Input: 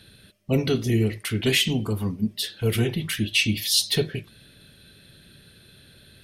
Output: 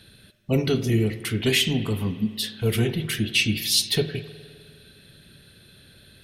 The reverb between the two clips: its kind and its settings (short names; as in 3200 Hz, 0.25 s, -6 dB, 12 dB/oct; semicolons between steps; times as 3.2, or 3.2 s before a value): spring tank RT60 2.1 s, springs 51 ms, chirp 35 ms, DRR 13 dB